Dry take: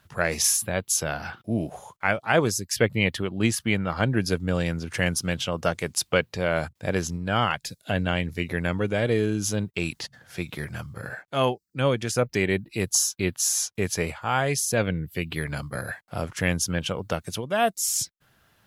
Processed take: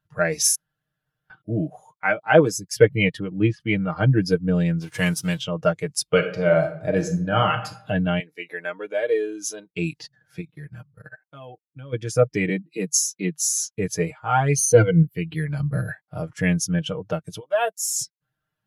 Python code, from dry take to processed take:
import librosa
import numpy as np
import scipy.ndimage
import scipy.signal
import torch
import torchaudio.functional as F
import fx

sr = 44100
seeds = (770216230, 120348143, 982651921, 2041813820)

y = fx.highpass(x, sr, hz=140.0, slope=12, at=(2.04, 2.54))
y = fx.lowpass(y, sr, hz=2900.0, slope=12, at=(3.19, 3.6))
y = fx.envelope_flatten(y, sr, power=0.6, at=(4.8, 5.38), fade=0.02)
y = fx.reverb_throw(y, sr, start_s=6.03, length_s=1.64, rt60_s=0.93, drr_db=4.0)
y = fx.highpass(y, sr, hz=480.0, slope=12, at=(8.2, 9.7))
y = fx.level_steps(y, sr, step_db=18, at=(10.4, 11.92), fade=0.02)
y = fx.cheby1_highpass(y, sr, hz=150.0, order=6, at=(12.49, 13.41))
y = fx.ripple_eq(y, sr, per_octave=1.9, db=14, at=(14.56, 15.03))
y = fx.low_shelf(y, sr, hz=390.0, db=7.0, at=(15.6, 16.06))
y = fx.highpass(y, sr, hz=fx.line((17.39, 750.0), (17.88, 280.0)), slope=12, at=(17.39, 17.88), fade=0.02)
y = fx.edit(y, sr, fx.room_tone_fill(start_s=0.55, length_s=0.75), tone=tone)
y = fx.high_shelf(y, sr, hz=6200.0, db=3.0)
y = y + 0.63 * np.pad(y, (int(6.5 * sr / 1000.0), 0))[:len(y)]
y = fx.spectral_expand(y, sr, expansion=1.5)
y = y * 10.0 ** (2.0 / 20.0)